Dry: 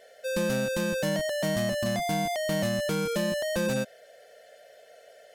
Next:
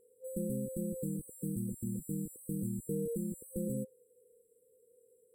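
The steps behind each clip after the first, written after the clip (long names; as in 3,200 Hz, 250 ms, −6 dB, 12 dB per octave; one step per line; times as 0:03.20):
brick-wall band-stop 520–7,600 Hz
level −6 dB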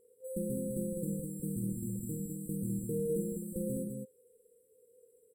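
loudspeakers that aren't time-aligned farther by 17 metres −7 dB, 70 metres −5 dB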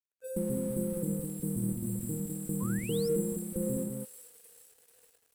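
delay with a high-pass on its return 440 ms, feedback 65%, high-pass 2,800 Hz, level −3.5 dB
sound drawn into the spectrogram rise, 0:02.60–0:03.09, 970–5,600 Hz −50 dBFS
dead-zone distortion −56 dBFS
level +4 dB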